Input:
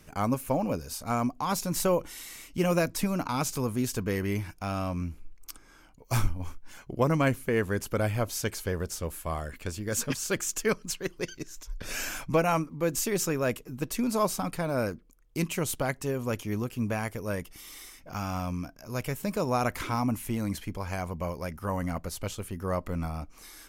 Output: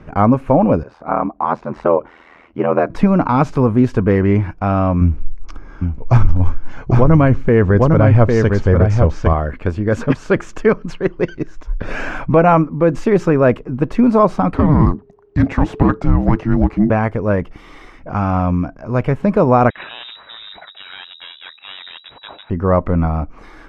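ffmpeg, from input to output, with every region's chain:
-filter_complex "[0:a]asettb=1/sr,asplit=3[s0][s1][s2];[s0]atrim=end=0.834[s3];[s1]atrim=start=0.83:end=2.9,asetpts=PTS-STARTPTS,afade=t=in:d=0.004:c=qsin,afade=t=out:st=2.066:d=0.004:c=qsin,aeval=exprs='val(0)*sin(2*PI*41*n/s)':c=same,bandpass=f=900:t=q:w=0.6[s4];[s2]atrim=start=2.896[s5];[s3][s4]acrossfade=d=0.004:c1=hsin:c2=qsin[s6];[s6][s5]acrossfade=d=0.004:c1=qsin:c2=hsin,asettb=1/sr,asplit=3[s7][s8][s9];[s7]atrim=end=5.014[s10];[s8]atrim=start=5.01:end=9.33,asetpts=PTS-STARTPTS,afade=t=in:d=0.004:c=qsin,afade=t=out:st=4.316:d=0.004:c=qsin,lowpass=f=6400:t=q:w=2.1,lowshelf=f=120:g=9.5,aecho=1:1:804:0.501,atrim=end_sample=190512[s11];[s9]atrim=start=9.326[s12];[s10][s11]acrossfade=d=0.004:c1=hsin:c2=qsin[s13];[s13][s12]acrossfade=d=0.004:c1=qsin:c2=hsin,asettb=1/sr,asplit=3[s14][s15][s16];[s14]atrim=end=14.544[s17];[s15]atrim=start=14.54:end=16.9,asetpts=PTS-STARTPTS,afade=t=in:d=0.004:c=qsin,afade=t=out:st=2.356:d=0.004:c=qsin,equalizer=f=2500:w=1.3:g=-7,asplit=2[s18][s19];[s19]highpass=f=720:p=1,volume=5.62,asoftclip=type=tanh:threshold=0.158[s20];[s18][s20]amix=inputs=2:normalize=0,lowpass=f=2400:p=1,volume=0.501,afreqshift=-440[s21];[s16]atrim=start=16.896[s22];[s17][s21]acrossfade=d=0.004:c1=hsin:c2=qsin[s23];[s23][s22]acrossfade=d=0.004:c1=qsin:c2=hsin,asettb=1/sr,asplit=3[s24][s25][s26];[s24]atrim=end=19.704[s27];[s25]atrim=start=19.7:end=22.5,asetpts=PTS-STARTPTS,afade=t=in:d=0.004:c=qsin,afade=t=out:st=2.796:d=0.004:c=qsin,aeval=exprs='(tanh(44.7*val(0)+0.65)-tanh(0.65))/44.7':c=same,lowpass=f=3300:t=q:w=0.5098,lowpass=f=3300:t=q:w=0.6013,lowpass=f=3300:t=q:w=0.9,lowpass=f=3300:t=q:w=2.563,afreqshift=-3900[s28];[s26]atrim=start=22.496[s29];[s27][s28]acrossfade=d=0.004:c1=hsin:c2=qsin[s30];[s30][s29]acrossfade=d=0.004:c1=qsin:c2=hsin,lowpass=1400,alimiter=level_in=7.5:limit=0.891:release=50:level=0:latency=1,volume=0.891"

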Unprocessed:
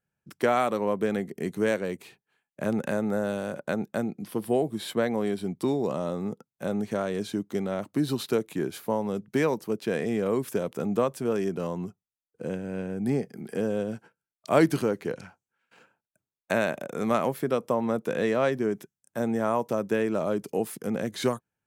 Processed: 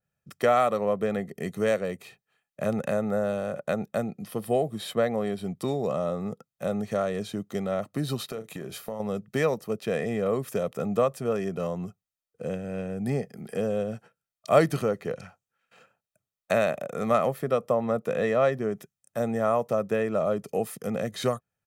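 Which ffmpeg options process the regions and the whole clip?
-filter_complex "[0:a]asettb=1/sr,asplit=3[s0][s1][s2];[s0]atrim=end=8.274[s3];[s1]atrim=start=8.27:end=9,asetpts=PTS-STARTPTS,afade=t=in:d=0.004:c=qsin,afade=t=out:st=0.726:d=0.004:c=qsin,asplit=2[s4][s5];[s5]adelay=36,volume=0.251[s6];[s4][s6]amix=inputs=2:normalize=0,atrim=end_sample=32193,acompressor=threshold=0.0355:ratio=12:attack=3.2:release=140:knee=1:detection=peak[s7];[s2]atrim=start=8.996[s8];[s3][s7]acrossfade=d=0.004:c1=hsin:c2=qsin[s9];[s9][s8]acrossfade=d=0.004:c1=qsin:c2=hsin,aecho=1:1:1.6:0.54,adynamicequalizer=threshold=0.00794:dfrequency=2400:dqfactor=0.7:tfrequency=2400:tqfactor=0.7:attack=5:release=100:ratio=0.375:range=3:mode=cutabove:tftype=highshelf"

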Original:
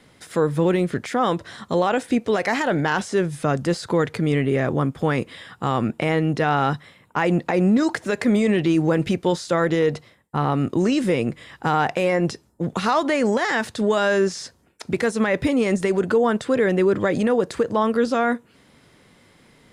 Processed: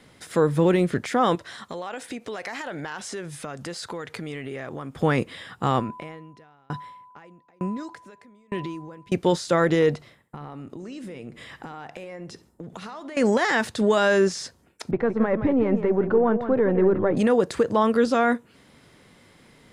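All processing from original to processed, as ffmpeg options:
-filter_complex "[0:a]asettb=1/sr,asplit=3[s0][s1][s2];[s0]atrim=end=1.354[s3];[s1]atrim=start=1.35:end=4.93,asetpts=PTS-STARTPTS,afade=t=in:d=0.004:c=qsin,afade=t=out:st=3.576:d=0.004:c=qsin,lowshelf=f=460:g=-9.5,acompressor=threshold=0.0316:ratio=5:attack=3.2:release=140:knee=1:detection=peak[s4];[s2]atrim=start=4.926[s5];[s3][s4]acrossfade=d=0.004:c1=hsin:c2=qsin[s6];[s6][s5]acrossfade=d=0.004:c1=qsin:c2=hsin,asettb=1/sr,asplit=3[s7][s8][s9];[s7]atrim=end=5.794[s10];[s8]atrim=start=5.79:end=9.12,asetpts=PTS-STARTPTS,afade=t=in:d=0.004:c=qsin,afade=t=out:st=3.326:d=0.004:c=qsin,acompressor=threshold=0.0631:ratio=4:attack=3.2:release=140:knee=1:detection=peak,aeval=exprs='val(0)+0.0224*sin(2*PI*1000*n/s)':c=same,aeval=exprs='val(0)*pow(10,-35*if(lt(mod(1.1*n/s,1),2*abs(1.1)/1000),1-mod(1.1*n/s,1)/(2*abs(1.1)/1000),(mod(1.1*n/s,1)-2*abs(1.1)/1000)/(1-2*abs(1.1)/1000))/20)':c=same[s11];[s9]atrim=start=9.116[s12];[s10][s11]acrossfade=d=0.004:c1=hsin:c2=qsin[s13];[s13][s12]acrossfade=d=0.004:c1=qsin:c2=hsin,asettb=1/sr,asplit=3[s14][s15][s16];[s14]atrim=end=9.954[s17];[s15]atrim=start=9.95:end=13.17,asetpts=PTS-STARTPTS,afade=t=in:d=0.004:c=qsin,afade=t=out:st=3.216:d=0.004:c=qsin,acompressor=threshold=0.02:ratio=16:attack=3.2:release=140:knee=1:detection=peak,asplit=2[s18][s19];[s19]adelay=68,lowpass=f=2900:p=1,volume=0.188,asplit=2[s20][s21];[s21]adelay=68,lowpass=f=2900:p=1,volume=0.38,asplit=2[s22][s23];[s23]adelay=68,lowpass=f=2900:p=1,volume=0.38,asplit=2[s24][s25];[s25]adelay=68,lowpass=f=2900:p=1,volume=0.38[s26];[s18][s20][s22][s24][s26]amix=inputs=5:normalize=0,atrim=end_sample=142002[s27];[s16]atrim=start=13.166[s28];[s17][s27]acrossfade=d=0.004:c1=hsin:c2=qsin[s29];[s29][s28]acrossfade=d=0.004:c1=qsin:c2=hsin,asettb=1/sr,asplit=3[s30][s31][s32];[s30]atrim=end=14.914[s33];[s31]atrim=start=14.91:end=17.17,asetpts=PTS-STARTPTS,afade=t=in:d=0.004:c=qsin,afade=t=out:st=2.256:d=0.004:c=qsin,aeval=exprs='if(lt(val(0),0),0.708*val(0),val(0))':c=same,lowpass=1200,aecho=1:1:168:0.335,atrim=end_sample=99666[s34];[s32]atrim=start=17.166[s35];[s33][s34]acrossfade=d=0.004:c1=hsin:c2=qsin[s36];[s36][s35]acrossfade=d=0.004:c1=qsin:c2=hsin"

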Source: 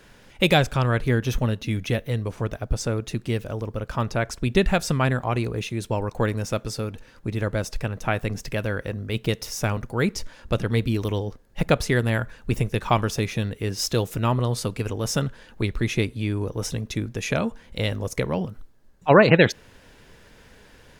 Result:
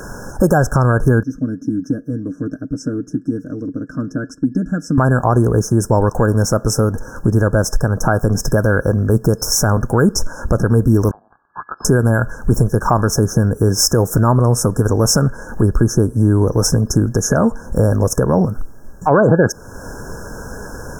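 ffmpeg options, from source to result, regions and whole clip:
-filter_complex "[0:a]asettb=1/sr,asplit=3[s0][s1][s2];[s0]atrim=end=1.234[s3];[s1]atrim=start=1.23:end=4.98,asetpts=PTS-STARTPTS,afade=t=in:d=0.004:c=qsin,afade=t=out:st=3.746:d=0.004:c=qsin,asplit=3[s4][s5][s6];[s4]bandpass=f=270:t=q:w=8,volume=1[s7];[s5]bandpass=f=2290:t=q:w=8,volume=0.501[s8];[s6]bandpass=f=3010:t=q:w=8,volume=0.355[s9];[s7][s8][s9]amix=inputs=3:normalize=0,equalizer=f=390:w=7.3:g=-12,aecho=1:1:6.5:0.49,atrim=end_sample=165375[s10];[s2]atrim=start=4.976[s11];[s3][s10]acrossfade=d=0.004:c1=hsin:c2=qsin[s12];[s12][s11]acrossfade=d=0.004:c1=qsin:c2=hsin,asettb=1/sr,asplit=3[s13][s14][s15];[s13]atrim=end=11.114[s16];[s14]atrim=start=11.11:end=11.85,asetpts=PTS-STARTPTS,afade=t=in:d=0.004:c=qsin,afade=t=out:st=0.736:d=0.004:c=qsin,aecho=1:1:1.1:0.36,atrim=end_sample=32634,acompressor=threshold=0.0251:ratio=5:attack=3.2:release=140:knee=1:detection=peak,lowpass=f=3200:t=q:w=0.5098,lowpass=f=3200:t=q:w=0.6013,lowpass=f=3200:t=q:w=0.9,lowpass=f=3200:t=q:w=2.563,afreqshift=-3800[s17];[s15]atrim=start=11.846[s18];[s16][s17]acrossfade=d=0.004:c1=hsin:c2=qsin[s19];[s19][s18]acrossfade=d=0.004:c1=qsin:c2=hsin,afftfilt=real='re*(1-between(b*sr/4096,1700,5200))':imag='im*(1-between(b*sr/4096,1700,5200))':win_size=4096:overlap=0.75,acompressor=threshold=0.0141:ratio=2,alimiter=level_in=14.1:limit=0.891:release=50:level=0:latency=1,volume=0.841"

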